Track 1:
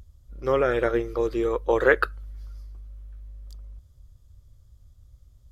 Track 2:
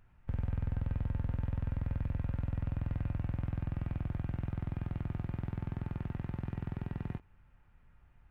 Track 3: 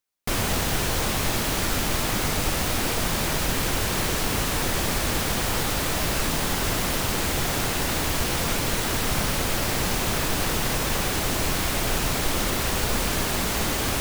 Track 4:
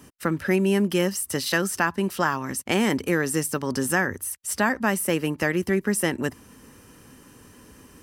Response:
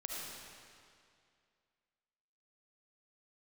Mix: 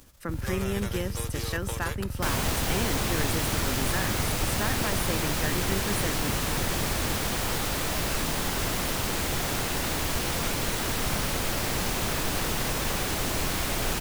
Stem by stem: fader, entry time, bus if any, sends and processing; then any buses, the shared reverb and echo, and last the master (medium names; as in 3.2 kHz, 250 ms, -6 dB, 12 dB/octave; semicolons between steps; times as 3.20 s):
-9.5 dB, 0.00 s, no send, formants flattened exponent 0.3; compression 6:1, threshold -24 dBFS, peak gain reduction 11.5 dB
+0.5 dB, 0.00 s, no send, none
-3.5 dB, 1.95 s, no send, none
-10.0 dB, 0.00 s, no send, none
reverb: none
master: none